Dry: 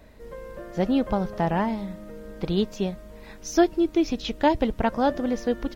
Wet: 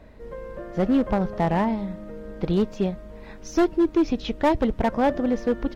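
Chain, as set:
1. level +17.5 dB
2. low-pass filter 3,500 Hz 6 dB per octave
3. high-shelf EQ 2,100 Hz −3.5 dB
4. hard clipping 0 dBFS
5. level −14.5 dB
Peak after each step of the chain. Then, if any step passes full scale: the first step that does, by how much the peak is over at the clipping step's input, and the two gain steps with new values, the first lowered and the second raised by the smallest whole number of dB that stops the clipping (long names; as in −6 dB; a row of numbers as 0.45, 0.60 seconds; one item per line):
+10.5, +10.5, +10.0, 0.0, −14.5 dBFS
step 1, 10.0 dB
step 1 +7.5 dB, step 5 −4.5 dB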